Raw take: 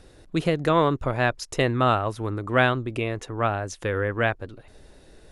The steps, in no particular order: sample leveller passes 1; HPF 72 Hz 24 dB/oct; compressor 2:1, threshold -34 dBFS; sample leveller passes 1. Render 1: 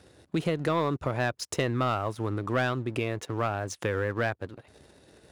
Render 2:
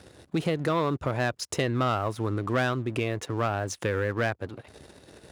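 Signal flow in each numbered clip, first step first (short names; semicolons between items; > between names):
first sample leveller > HPF > second sample leveller > compressor; second sample leveller > compressor > first sample leveller > HPF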